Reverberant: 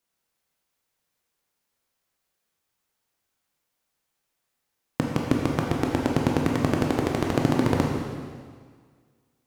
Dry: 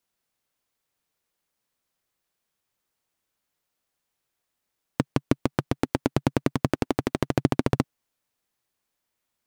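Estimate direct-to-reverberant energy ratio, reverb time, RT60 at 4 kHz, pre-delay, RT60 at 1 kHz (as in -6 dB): -1.0 dB, 1.8 s, 1.7 s, 7 ms, 1.8 s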